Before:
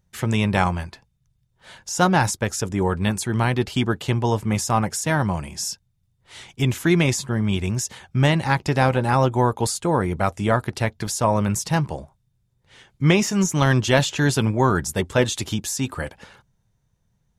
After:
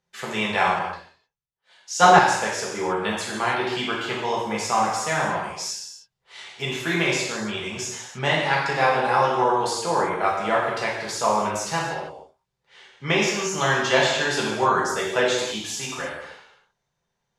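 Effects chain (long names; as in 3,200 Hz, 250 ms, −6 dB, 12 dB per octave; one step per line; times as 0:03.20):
three-way crossover with the lows and the highs turned down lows −19 dB, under 370 Hz, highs −14 dB, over 6,600 Hz
reverb whose tail is shaped and stops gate 340 ms falling, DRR −5 dB
0:00.79–0:02.19: multiband upward and downward expander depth 70%
level −3.5 dB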